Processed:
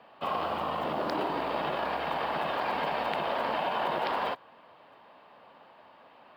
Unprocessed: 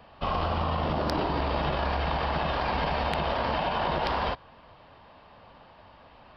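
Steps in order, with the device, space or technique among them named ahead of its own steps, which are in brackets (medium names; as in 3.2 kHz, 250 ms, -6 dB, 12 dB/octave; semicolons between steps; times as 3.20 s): early digital voice recorder (band-pass 260–3700 Hz; block-companded coder 7-bit); trim -1.5 dB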